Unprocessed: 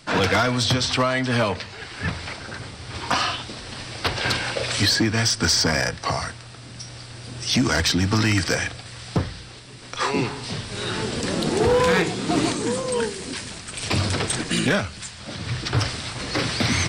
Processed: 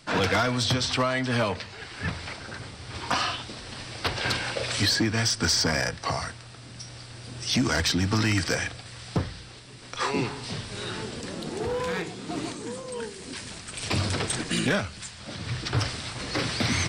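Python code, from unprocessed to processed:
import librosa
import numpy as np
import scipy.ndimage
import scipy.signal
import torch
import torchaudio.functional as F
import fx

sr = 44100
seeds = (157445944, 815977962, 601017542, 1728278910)

y = fx.gain(x, sr, db=fx.line((10.66, -4.0), (11.34, -11.0), (12.97, -11.0), (13.52, -4.0)))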